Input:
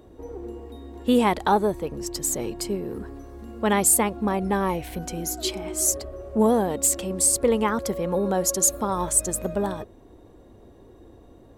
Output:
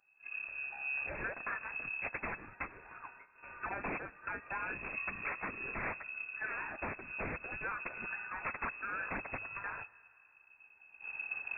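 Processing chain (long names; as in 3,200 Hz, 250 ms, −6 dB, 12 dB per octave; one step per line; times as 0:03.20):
camcorder AGC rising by 8.9 dB per second
0:02.07–0:04.50: high-pass filter 120 Hz 24 dB per octave
noise gate −34 dBFS, range −15 dB
inverse Chebyshev band-stop filter 200–430 Hz, stop band 70 dB
downward compressor 5 to 1, threshold −31 dBFS, peak gain reduction 14.5 dB
tube saturation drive 35 dB, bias 0.6
flanger 1.6 Hz, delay 4.7 ms, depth 5.8 ms, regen −28%
dense smooth reverb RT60 2.8 s, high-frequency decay 0.55×, DRR 18.5 dB
bad sample-rate conversion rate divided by 8×, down none, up hold
voice inversion scrambler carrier 2,600 Hz
level +6 dB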